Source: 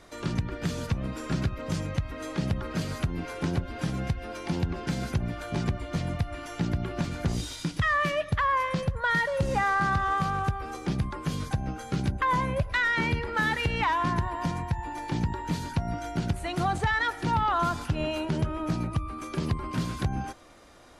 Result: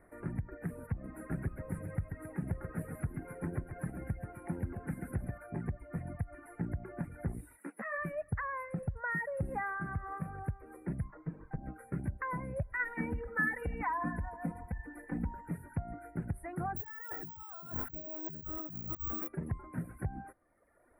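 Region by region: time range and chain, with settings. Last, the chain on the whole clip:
0.96–5.38 high shelf 4900 Hz +5 dB + feedback echo 0.135 s, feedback 54%, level -5.5 dB
7.56–7.97 spectral limiter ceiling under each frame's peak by 14 dB + steep high-pass 200 Hz + ensemble effect
11.08–11.63 minimum comb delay 6.4 ms + tape spacing loss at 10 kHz 25 dB
12.79–15.48 reverse delay 0.105 s, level -12.5 dB + comb 4 ms, depth 89%
16.76–19.28 negative-ratio compressor -36 dBFS + careless resampling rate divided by 2×, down filtered, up zero stuff
whole clip: elliptic band-stop 1900–9800 Hz, stop band 40 dB; reverb removal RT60 1.5 s; bell 1100 Hz -5 dB 0.48 oct; gain -7.5 dB

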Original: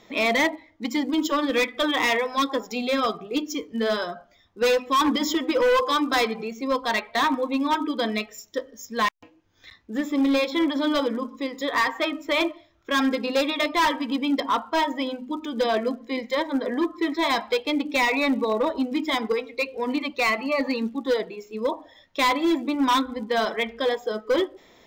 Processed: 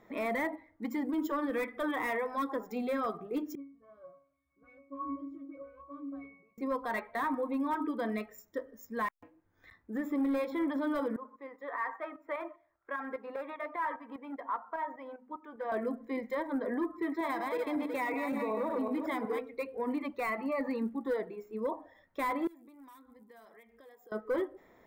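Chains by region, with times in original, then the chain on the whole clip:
3.55–6.58 switching spikes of -29 dBFS + octave resonator C#, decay 0.44 s + dispersion highs, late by 41 ms, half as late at 2300 Hz
11.16–15.72 three-band isolator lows -15 dB, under 520 Hz, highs -16 dB, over 2300 Hz + tremolo saw up 5 Hz, depth 60%
17.02–19.39 regenerating reverse delay 0.186 s, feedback 40%, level -5 dB + HPF 120 Hz 6 dB/oct
22.47–24.12 pre-emphasis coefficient 0.8 + notch 1500 Hz, Q 15 + compressor 4:1, threshold -48 dBFS
whole clip: band shelf 4200 Hz -15.5 dB; limiter -20 dBFS; gain -6 dB

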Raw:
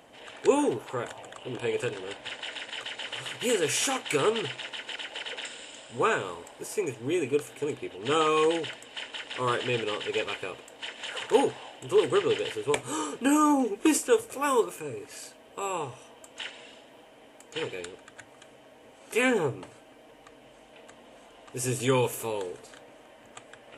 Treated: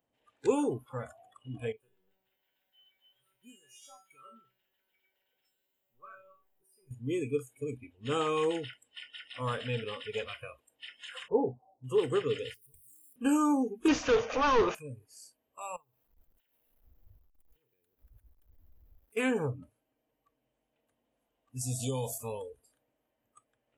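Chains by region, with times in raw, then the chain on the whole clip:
1.72–6.91 zero-crossing step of -40.5 dBFS + high shelf 2900 Hz -4.5 dB + resonator 190 Hz, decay 0.69 s, mix 90%
11.28–11.84 inverse Chebyshev low-pass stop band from 2300 Hz, stop band 50 dB + doubler 17 ms -10.5 dB
12.54–13.16 switching spikes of -20.5 dBFS + passive tone stack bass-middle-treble 10-0-1
13.88–14.75 overdrive pedal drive 27 dB, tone 3200 Hz, clips at -11 dBFS + Chebyshev low-pass 6500 Hz, order 6
15.76–19.17 level-crossing sampler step -45.5 dBFS + compressor 10:1, threshold -48 dBFS
21.61–22.18 EQ curve 470 Hz 0 dB, 690 Hz +10 dB, 1600 Hz -17 dB, 3900 Hz +8 dB + compressor 3:1, threshold -26 dBFS
whole clip: spectral noise reduction 23 dB; low shelf 250 Hz +11.5 dB; gain -8 dB

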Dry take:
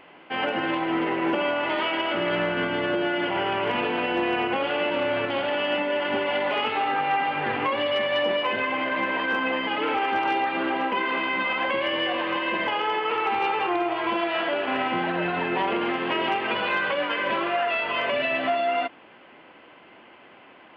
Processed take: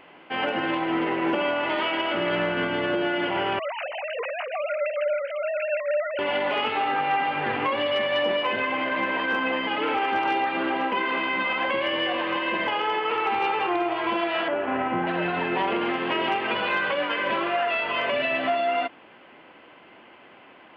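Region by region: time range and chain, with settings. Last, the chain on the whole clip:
3.59–6.19 sine-wave speech + harmonic tremolo 6.7 Hz, depth 50%, crossover 600 Hz
14.48–15.07 LPF 1800 Hz + low shelf 130 Hz +6.5 dB
whole clip: dry

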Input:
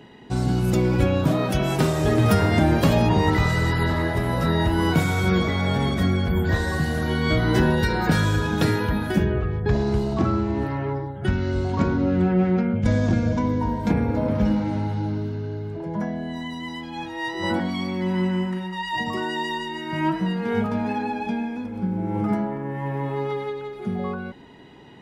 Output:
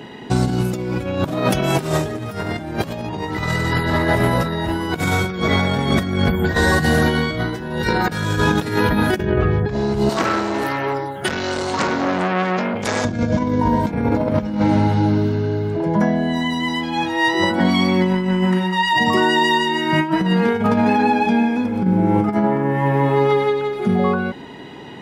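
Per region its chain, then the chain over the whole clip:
10.09–13.05 RIAA curve recording + core saturation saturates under 1600 Hz
whole clip: HPF 130 Hz 6 dB/oct; negative-ratio compressor -26 dBFS, ratio -0.5; gain +9 dB

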